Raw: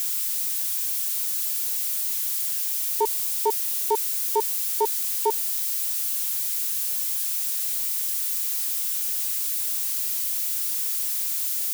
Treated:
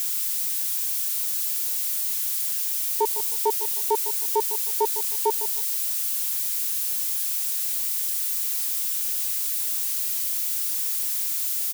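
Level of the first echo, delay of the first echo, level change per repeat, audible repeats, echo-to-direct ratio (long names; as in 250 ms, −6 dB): −13.0 dB, 155 ms, −12.0 dB, 2, −12.5 dB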